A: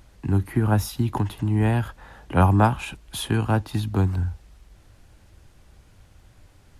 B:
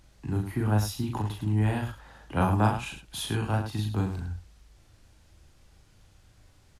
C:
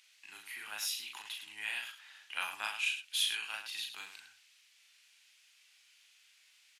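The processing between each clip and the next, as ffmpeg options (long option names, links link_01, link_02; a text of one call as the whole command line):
ffmpeg -i in.wav -filter_complex "[0:a]equalizer=frequency=5400:width=0.69:gain=5,asplit=2[link_01][link_02];[link_02]aecho=0:1:37.9|105:0.708|0.355[link_03];[link_01][link_03]amix=inputs=2:normalize=0,volume=-8dB" out.wav
ffmpeg -i in.wav -af "highpass=frequency=2500:width_type=q:width=2.3" out.wav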